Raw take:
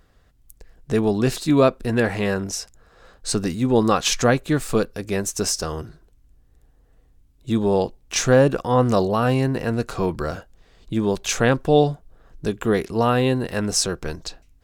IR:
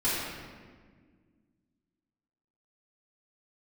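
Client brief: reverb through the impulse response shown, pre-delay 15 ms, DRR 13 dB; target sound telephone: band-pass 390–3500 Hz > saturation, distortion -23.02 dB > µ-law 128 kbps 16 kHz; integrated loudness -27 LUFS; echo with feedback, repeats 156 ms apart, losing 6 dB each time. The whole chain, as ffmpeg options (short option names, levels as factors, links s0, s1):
-filter_complex "[0:a]aecho=1:1:156|312|468|624|780|936:0.501|0.251|0.125|0.0626|0.0313|0.0157,asplit=2[s0][s1];[1:a]atrim=start_sample=2205,adelay=15[s2];[s1][s2]afir=irnorm=-1:irlink=0,volume=0.0631[s3];[s0][s3]amix=inputs=2:normalize=0,highpass=390,lowpass=3500,asoftclip=threshold=0.473,volume=0.708" -ar 16000 -c:a pcm_mulaw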